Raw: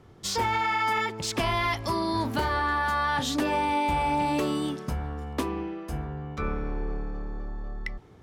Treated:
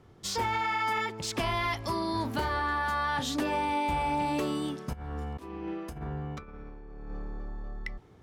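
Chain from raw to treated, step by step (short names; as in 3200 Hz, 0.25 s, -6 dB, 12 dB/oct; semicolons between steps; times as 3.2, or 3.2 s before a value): 4.93–7.11 negative-ratio compressor -34 dBFS, ratio -0.5; gain -3.5 dB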